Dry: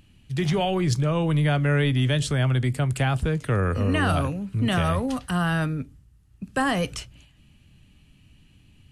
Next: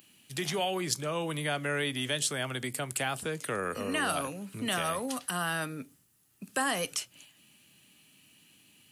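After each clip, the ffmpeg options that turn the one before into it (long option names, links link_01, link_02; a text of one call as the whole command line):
ffmpeg -i in.wav -filter_complex "[0:a]highpass=180,aemphasis=mode=production:type=bsi,asplit=2[link_01][link_02];[link_02]acompressor=threshold=-36dB:ratio=6,volume=2dB[link_03];[link_01][link_03]amix=inputs=2:normalize=0,volume=-7.5dB" out.wav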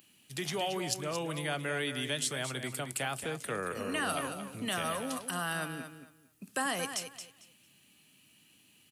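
ffmpeg -i in.wav -af "aecho=1:1:225|450|675:0.335|0.0703|0.0148,volume=-3dB" out.wav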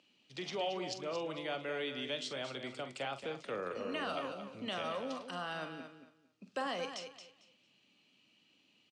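ffmpeg -i in.wav -filter_complex "[0:a]highpass=150,equalizer=frequency=150:width_type=q:width=4:gain=-6,equalizer=frequency=540:width_type=q:width=4:gain=5,equalizer=frequency=1700:width_type=q:width=4:gain=-6,lowpass=frequency=5300:width=0.5412,lowpass=frequency=5300:width=1.3066,asplit=2[link_01][link_02];[link_02]adelay=44,volume=-10.5dB[link_03];[link_01][link_03]amix=inputs=2:normalize=0,volume=-4.5dB" out.wav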